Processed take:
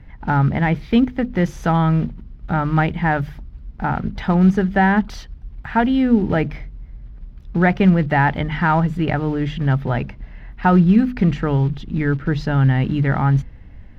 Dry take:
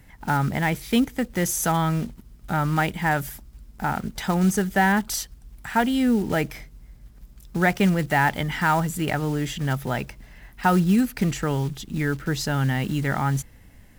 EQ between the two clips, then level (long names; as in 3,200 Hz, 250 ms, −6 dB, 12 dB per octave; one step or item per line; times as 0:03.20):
high-frequency loss of the air 300 metres
low-shelf EQ 140 Hz +8.5 dB
mains-hum notches 50/100/150/200/250 Hz
+4.5 dB